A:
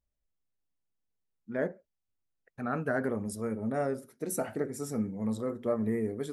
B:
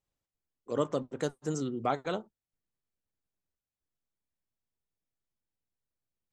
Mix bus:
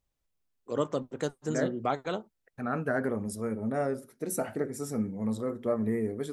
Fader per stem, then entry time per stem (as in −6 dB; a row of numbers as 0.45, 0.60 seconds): +1.0, +0.5 decibels; 0.00, 0.00 seconds